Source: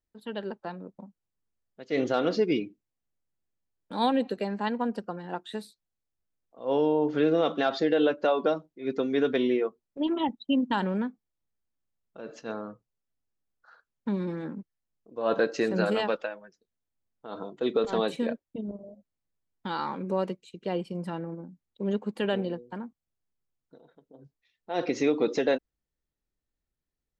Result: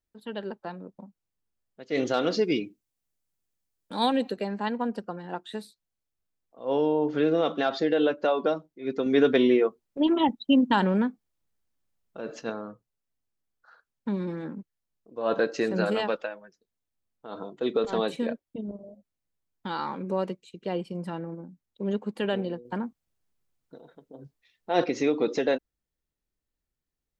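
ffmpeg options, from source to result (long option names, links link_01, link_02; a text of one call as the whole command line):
ffmpeg -i in.wav -filter_complex "[0:a]asettb=1/sr,asplit=3[link_01][link_02][link_03];[link_01]atrim=end=1.954[link_04];[link_02]atrim=start=1.95:end=4.31,asetpts=PTS-STARTPTS,afade=type=in:duration=0.004:curve=qsin,afade=type=out:start_time=2.356:duration=0.004:curve=qsin,highshelf=frequency=3900:gain=9[link_05];[link_03]atrim=start=4.306[link_06];[link_04][link_05]acrossfade=duration=0.004:curve1=hsin:curve2=qsin[link_07];[link_07][link_06]acrossfade=duration=0.004:curve1=qsin:curve2=hsin,asettb=1/sr,asplit=3[link_08][link_09][link_10];[link_08]atrim=end=9.064[link_11];[link_09]atrim=start=9.06:end=12.5,asetpts=PTS-STARTPTS,afade=type=in:duration=0.004:curve=qsin,afade=type=out:start_time=3.436:duration=0.004:curve=qsin,acontrast=24[link_12];[link_10]atrim=start=12.496[link_13];[link_11][link_12]acrossfade=duration=0.004:curve1=hsin:curve2=qsin[link_14];[link_14][link_13]acrossfade=duration=0.004:curve1=qsin:curve2=hsin,asettb=1/sr,asplit=3[link_15][link_16][link_17];[link_15]atrim=end=22.654[link_18];[link_16]atrim=start=22.65:end=24.84,asetpts=PTS-STARTPTS,afade=type=in:duration=0.004:curve=qsin,afade=type=out:start_time=2.186:duration=0.004:curve=qsin,acontrast=57[link_19];[link_17]atrim=start=24.836[link_20];[link_18][link_19]acrossfade=duration=0.004:curve1=hsin:curve2=qsin[link_21];[link_21][link_20]acrossfade=duration=0.004:curve1=qsin:curve2=hsin" out.wav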